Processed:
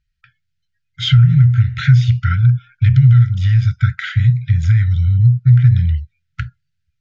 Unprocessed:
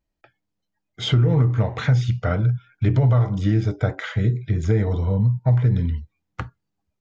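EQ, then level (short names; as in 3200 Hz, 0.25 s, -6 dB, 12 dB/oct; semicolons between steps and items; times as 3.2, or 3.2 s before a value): brick-wall FIR band-stop 170–1300 Hz; LPF 5000 Hz 12 dB/oct; bell 1000 Hz -3 dB 2.3 oct; +8.5 dB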